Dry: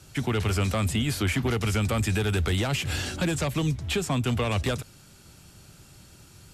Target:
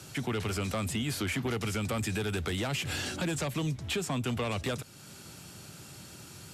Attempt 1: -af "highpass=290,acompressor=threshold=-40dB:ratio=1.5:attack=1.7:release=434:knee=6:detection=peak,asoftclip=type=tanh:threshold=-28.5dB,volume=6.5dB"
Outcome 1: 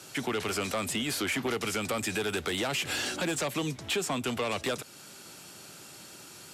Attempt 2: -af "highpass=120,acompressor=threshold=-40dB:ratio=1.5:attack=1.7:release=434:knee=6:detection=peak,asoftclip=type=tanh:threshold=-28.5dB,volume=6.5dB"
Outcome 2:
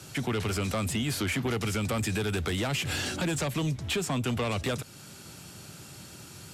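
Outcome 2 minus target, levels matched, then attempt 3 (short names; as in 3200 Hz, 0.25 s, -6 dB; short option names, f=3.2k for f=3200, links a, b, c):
compressor: peak gain reduction -3.5 dB
-af "highpass=120,acompressor=threshold=-50.5dB:ratio=1.5:attack=1.7:release=434:knee=6:detection=peak,asoftclip=type=tanh:threshold=-28.5dB,volume=6.5dB"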